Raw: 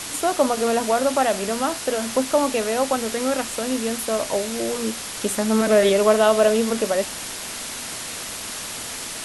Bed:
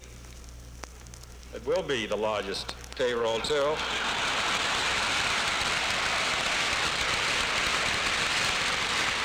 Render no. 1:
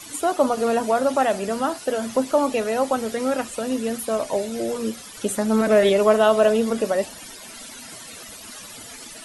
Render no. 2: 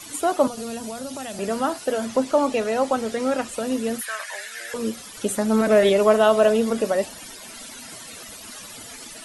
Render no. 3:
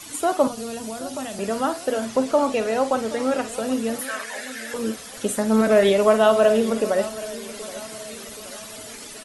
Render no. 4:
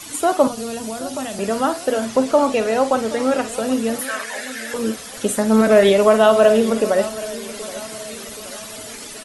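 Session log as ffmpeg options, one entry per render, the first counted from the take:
-af "afftdn=nr=14:nf=-32"
-filter_complex "[0:a]asettb=1/sr,asplit=3[s0][s1][s2];[s0]atrim=end=0.474[s3];[s1]atrim=start=0.47:end=1.39,asetpts=PTS-STARTPTS,afade=t=in:d=0.004:c=qsin,afade=t=out:st=0.916:d=0.004:c=qsin,acrossover=split=200|3000[s4][s5][s6];[s5]acompressor=threshold=0.0251:ratio=10:attack=3.2:release=140:knee=2.83:detection=peak[s7];[s4][s7][s6]amix=inputs=3:normalize=0[s8];[s2]atrim=start=1.386[s9];[s3][s8]acrossfade=d=0.004:c1=hsin:c2=qsin[s10];[s10][s9]acrossfade=d=0.004:c1=qsin:c2=hsin,asettb=1/sr,asplit=3[s11][s12][s13];[s11]atrim=end=2.054[s14];[s12]atrim=start=2.05:end=3.49,asetpts=PTS-STARTPTS,afade=t=in:d=0.004:c=qsin,afade=t=out:st=1.436:d=0.004:c=qsin,lowpass=9200[s15];[s13]atrim=start=3.486[s16];[s14][s15]acrossfade=d=0.004:c1=hsin:c2=qsin[s17];[s17][s16]acrossfade=d=0.004:c1=qsin:c2=hsin,asettb=1/sr,asplit=3[s18][s19][s20];[s18]atrim=end=4.014[s21];[s19]atrim=start=4.01:end=4.74,asetpts=PTS-STARTPTS,afade=t=in:d=0.004:c=qsin,afade=t=out:st=0.726:d=0.004:c=qsin,highpass=f=1700:t=q:w=7.5[s22];[s20]atrim=start=4.736[s23];[s21][s22]acrossfade=d=0.004:c1=hsin:c2=qsin[s24];[s24][s23]acrossfade=d=0.004:c1=qsin:c2=hsin"
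-filter_complex "[0:a]asplit=2[s0][s1];[s1]adelay=50,volume=0.237[s2];[s0][s2]amix=inputs=2:normalize=0,aecho=1:1:775|1550|2325|3100:0.15|0.0733|0.0359|0.0176"
-af "volume=1.58,alimiter=limit=0.794:level=0:latency=1"

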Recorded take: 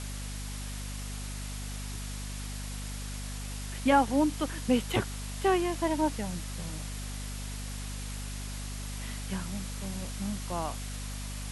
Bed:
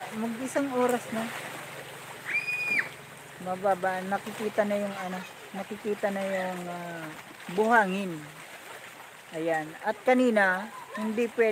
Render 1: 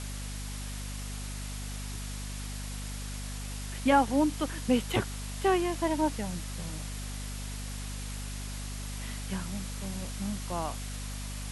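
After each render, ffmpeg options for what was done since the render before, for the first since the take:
-af anull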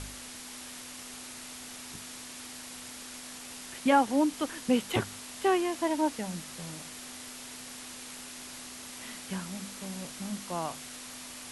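-af "bandreject=f=50:t=h:w=4,bandreject=f=100:t=h:w=4,bandreject=f=150:t=h:w=4,bandreject=f=200:t=h:w=4"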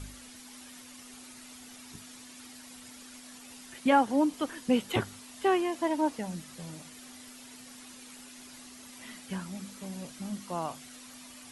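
-af "afftdn=nr=9:nf=-45"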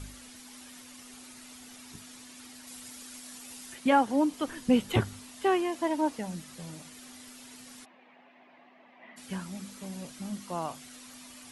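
-filter_complex "[0:a]asettb=1/sr,asplit=3[s0][s1][s2];[s0]atrim=end=2.674[s3];[s1]atrim=start=2.67:end=3.75,asetpts=PTS-STARTPTS,afade=t=in:d=0.004:c=qsin,afade=t=out:st=1.076:d=0.004:c=qsin,highshelf=f=5300:g=6.5[s4];[s2]atrim=start=3.746[s5];[s3][s4]acrossfade=d=0.004:c1=hsin:c2=qsin[s6];[s6][s5]acrossfade=d=0.004:c1=qsin:c2=hsin,asettb=1/sr,asplit=3[s7][s8][s9];[s7]atrim=end=4.474[s10];[s8]atrim=start=4.47:end=5.29,asetpts=PTS-STARTPTS,afade=t=in:d=0.004:c=qsin,afade=t=out:st=0.816:d=0.004:c=qsin,lowshelf=f=140:g=12[s11];[s9]atrim=start=5.286[s12];[s10][s11]acrossfade=d=0.004:c1=hsin:c2=qsin[s13];[s13][s12]acrossfade=d=0.004:c1=qsin:c2=hsin,asplit=3[s14][s15][s16];[s14]afade=t=out:st=7.84:d=0.02[s17];[s15]highpass=f=200:w=0.5412,highpass=f=200:w=1.3066,equalizer=f=250:t=q:w=4:g=-10,equalizer=f=420:t=q:w=4:g=-6,equalizer=f=700:t=q:w=4:g=7,equalizer=f=1400:t=q:w=4:g=-10,lowpass=f=2200:w=0.5412,lowpass=f=2200:w=1.3066,afade=t=in:st=7.84:d=0.02,afade=t=out:st=9.16:d=0.02[s18];[s16]afade=t=in:st=9.16:d=0.02[s19];[s17][s18][s19]amix=inputs=3:normalize=0"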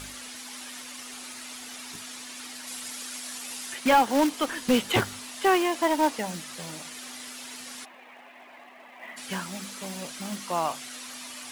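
-filter_complex "[0:a]acrusher=bits=4:mode=log:mix=0:aa=0.000001,asplit=2[s0][s1];[s1]highpass=f=720:p=1,volume=6.31,asoftclip=type=tanh:threshold=0.282[s2];[s0][s2]amix=inputs=2:normalize=0,lowpass=f=7500:p=1,volume=0.501"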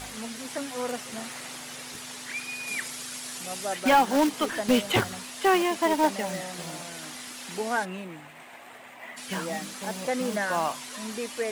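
-filter_complex "[1:a]volume=0.473[s0];[0:a][s0]amix=inputs=2:normalize=0"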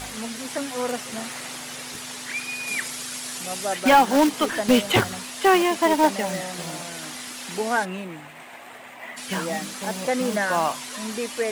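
-af "volume=1.68"

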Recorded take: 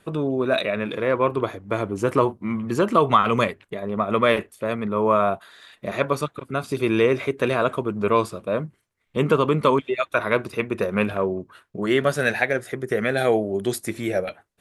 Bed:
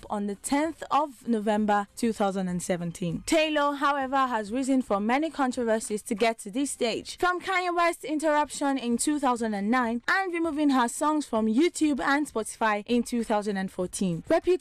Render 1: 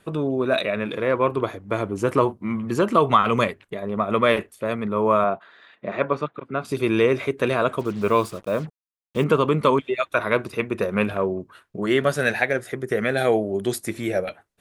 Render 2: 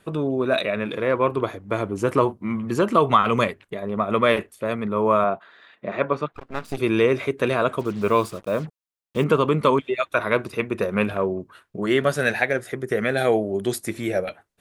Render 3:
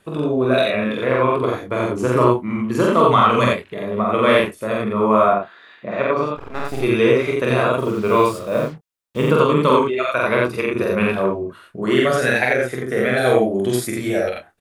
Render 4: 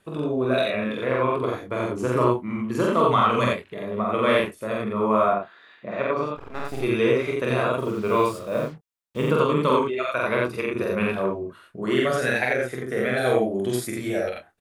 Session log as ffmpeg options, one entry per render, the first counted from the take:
-filter_complex "[0:a]asettb=1/sr,asplit=3[s0][s1][s2];[s0]atrim=end=5.244[s3];[s1]atrim=start=5.24:end=6.65,asetpts=PTS-STARTPTS,afade=t=in:d=0.004:c=qsin,afade=t=out:st=1.406:d=0.004:c=qsin,highpass=150,lowpass=2500[s4];[s2]atrim=start=6.646[s5];[s3][s4]acrossfade=d=0.004:c1=hsin:c2=qsin[s6];[s6][s5]acrossfade=d=0.004:c1=qsin:c2=hsin,asettb=1/sr,asplit=3[s7][s8][s9];[s7]atrim=end=7.794[s10];[s8]atrim=start=7.79:end=9.24,asetpts=PTS-STARTPTS,afade=t=in:d=0.004:c=qsin,afade=t=out:st=1.446:d=0.004:c=qsin,acrusher=bits=6:mix=0:aa=0.5[s11];[s9]atrim=start=9.236[s12];[s10][s11]acrossfade=d=0.004:c1=hsin:c2=qsin[s13];[s13][s12]acrossfade=d=0.004:c1=qsin:c2=hsin"
-filter_complex "[0:a]asettb=1/sr,asplit=3[s0][s1][s2];[s0]atrim=end=6.324[s3];[s1]atrim=start=6.32:end=6.78,asetpts=PTS-STARTPTS,afade=t=in:d=0.004:c=qsin,afade=t=out:st=0.456:d=0.004:c=qsin,aeval=exprs='max(val(0),0)':c=same[s4];[s2]atrim=start=6.776[s5];[s3][s4]acrossfade=d=0.004:c1=hsin:c2=qsin[s6];[s6][s5]acrossfade=d=0.004:c1=qsin:c2=hsin"
-filter_complex "[0:a]asplit=2[s0][s1];[s1]adelay=24,volume=0.355[s2];[s0][s2]amix=inputs=2:normalize=0,aecho=1:1:46.65|87.46:0.891|0.891"
-af "volume=0.531"

